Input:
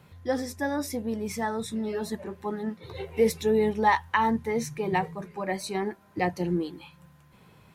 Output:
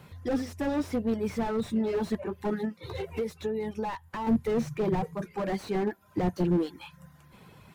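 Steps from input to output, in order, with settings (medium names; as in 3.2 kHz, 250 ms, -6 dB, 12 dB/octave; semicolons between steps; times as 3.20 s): reverb removal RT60 0.55 s; 2.65–4.27 s: compression 5:1, threshold -34 dBFS, peak gain reduction 15.5 dB; slew-rate limiter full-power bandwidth 16 Hz; trim +4 dB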